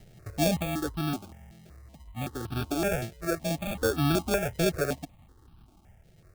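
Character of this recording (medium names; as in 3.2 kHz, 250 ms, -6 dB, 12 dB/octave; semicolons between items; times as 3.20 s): aliases and images of a low sample rate 1 kHz, jitter 0%; random-step tremolo 1.6 Hz; notches that jump at a steady rate 5.3 Hz 280–2000 Hz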